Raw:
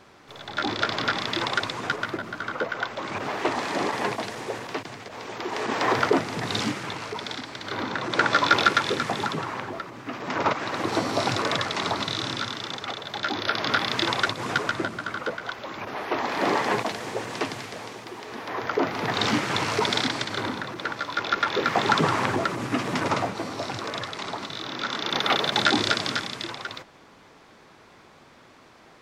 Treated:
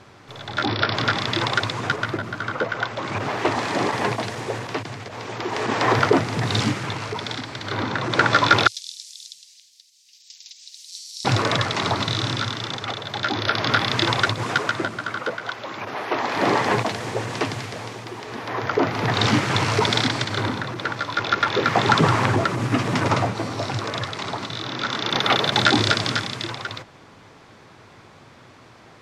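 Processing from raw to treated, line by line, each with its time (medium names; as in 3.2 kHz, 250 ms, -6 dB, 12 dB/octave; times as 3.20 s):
0.66–0.95 s: spectral selection erased 5.8–12 kHz
8.67–11.25 s: inverse Chebyshev high-pass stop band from 1.4 kHz, stop band 60 dB
14.43–16.35 s: high-pass 250 Hz 6 dB/octave
whole clip: low-pass 12 kHz 12 dB/octave; peaking EQ 110 Hz +10 dB 0.75 oct; trim +3.5 dB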